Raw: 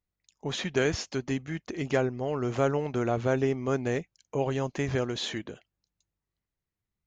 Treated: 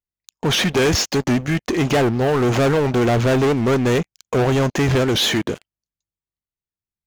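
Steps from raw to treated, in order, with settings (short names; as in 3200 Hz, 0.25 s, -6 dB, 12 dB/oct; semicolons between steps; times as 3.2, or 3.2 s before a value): sample leveller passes 5; record warp 78 rpm, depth 160 cents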